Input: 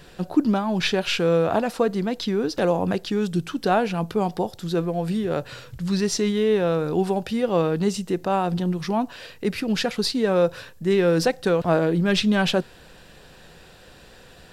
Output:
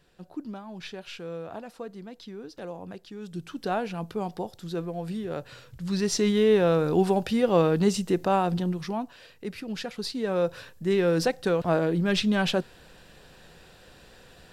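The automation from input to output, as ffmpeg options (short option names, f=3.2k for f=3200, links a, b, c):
-af "volume=6.5dB,afade=t=in:st=3.18:d=0.42:silence=0.354813,afade=t=in:st=5.75:d=0.61:silence=0.398107,afade=t=out:st=8.22:d=0.91:silence=0.298538,afade=t=in:st=9.93:d=0.78:silence=0.473151"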